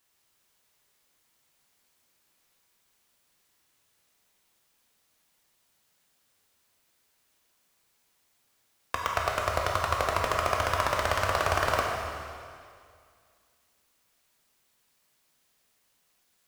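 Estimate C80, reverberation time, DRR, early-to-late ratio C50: 2.0 dB, 2.2 s, −1.0 dB, 1.0 dB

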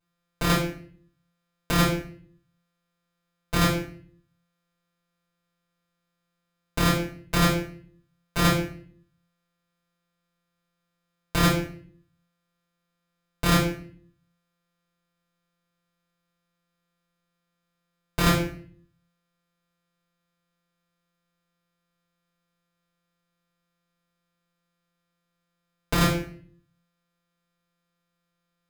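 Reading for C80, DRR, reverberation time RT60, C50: 9.5 dB, −7.0 dB, 0.55 s, 4.0 dB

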